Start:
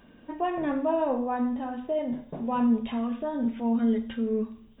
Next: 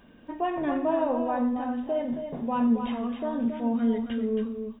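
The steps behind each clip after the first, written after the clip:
single-tap delay 273 ms −7.5 dB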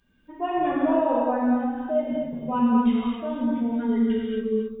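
spectral dynamics exaggerated over time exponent 1.5
reverb whose tail is shaped and stops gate 290 ms flat, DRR −5 dB

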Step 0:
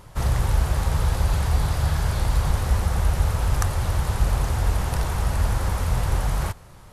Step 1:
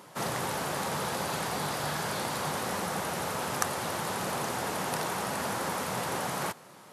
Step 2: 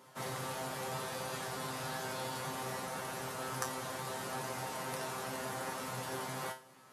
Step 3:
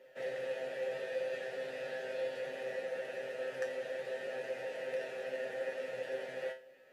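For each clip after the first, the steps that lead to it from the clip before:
high-pass filter 190 Hz 24 dB per octave
tuned comb filter 130 Hz, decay 0.31 s, harmonics all, mix 90%; level +2 dB
formant filter e; level +10.5 dB; MP2 192 kbit/s 48,000 Hz

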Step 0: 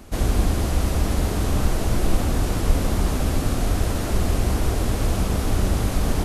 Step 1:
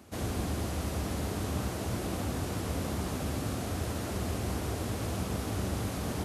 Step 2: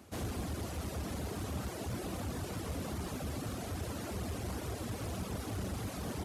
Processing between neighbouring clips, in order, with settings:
high-pass filter 74 Hz 24 dB per octave; level −8.5 dB
reverb reduction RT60 0.97 s; in parallel at −7 dB: wave folding −33.5 dBFS; on the sum: level −5 dB

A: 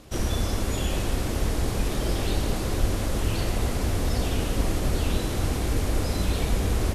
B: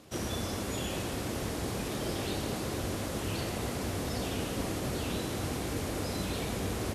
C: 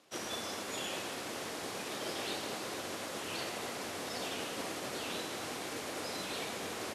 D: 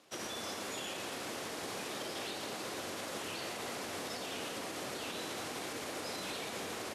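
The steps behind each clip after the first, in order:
high-pass filter 110 Hz 12 dB per octave; level −4.5 dB
meter weighting curve A; expander for the loud parts 1.5 to 1, over −50 dBFS
brickwall limiter −33 dBFS, peak gain reduction 7 dB; level +1.5 dB

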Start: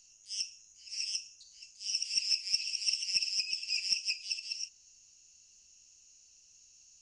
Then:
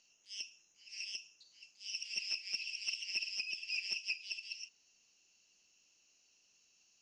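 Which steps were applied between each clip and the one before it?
three-way crossover with the lows and the highs turned down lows −20 dB, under 190 Hz, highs −22 dB, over 4,100 Hz
level +1.5 dB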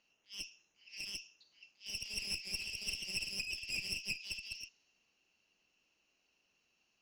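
low-pass that shuts in the quiet parts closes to 2,400 Hz, open at −36.5 dBFS
asymmetric clip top −44.5 dBFS
level +2 dB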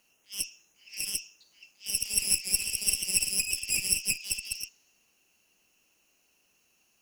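high shelf with overshoot 6,600 Hz +14 dB, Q 1.5
level +7.5 dB

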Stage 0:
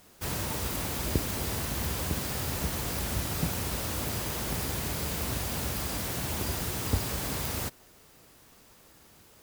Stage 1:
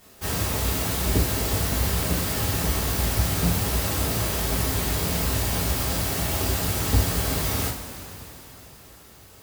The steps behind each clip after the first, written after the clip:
coupled-rooms reverb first 0.35 s, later 3.9 s, from −17 dB, DRR −5.5 dB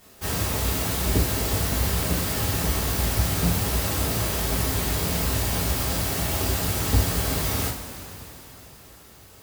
no processing that can be heard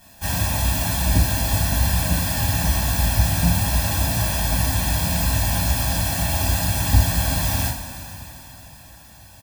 comb filter 1.2 ms, depth 96%

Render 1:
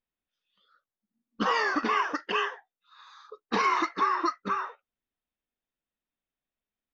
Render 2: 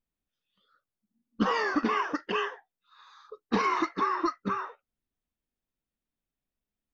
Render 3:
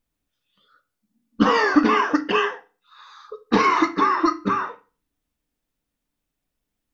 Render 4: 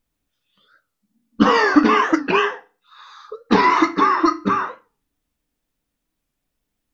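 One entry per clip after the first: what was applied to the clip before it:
low-shelf EQ 350 Hz +11.5 dB; level −3.5 dB
feedback delay network reverb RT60 0.35 s, low-frequency decay 1.35×, high-frequency decay 0.9×, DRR 8.5 dB; level +8.5 dB
wow of a warped record 45 rpm, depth 160 cents; level +3 dB

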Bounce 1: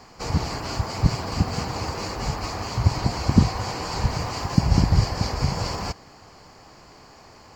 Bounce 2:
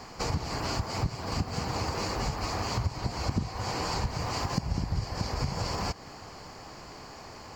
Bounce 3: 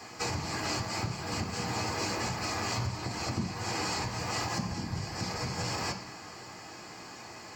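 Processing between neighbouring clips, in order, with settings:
downward compressor 5 to 1, threshold −31 dBFS, peak gain reduction 19.5 dB; level +3 dB
convolution reverb RT60 1.1 s, pre-delay 3 ms, DRR 1 dB

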